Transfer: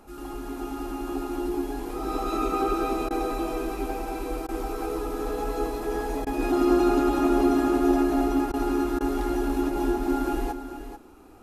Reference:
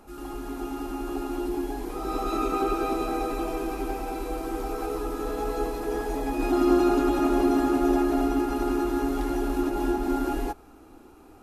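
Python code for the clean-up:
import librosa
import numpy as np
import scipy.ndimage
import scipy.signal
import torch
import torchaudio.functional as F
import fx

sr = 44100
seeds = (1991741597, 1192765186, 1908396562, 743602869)

y = fx.fix_interpolate(x, sr, at_s=(3.09, 4.47, 6.25, 8.52, 8.99), length_ms=15.0)
y = fx.fix_echo_inverse(y, sr, delay_ms=439, level_db=-10.0)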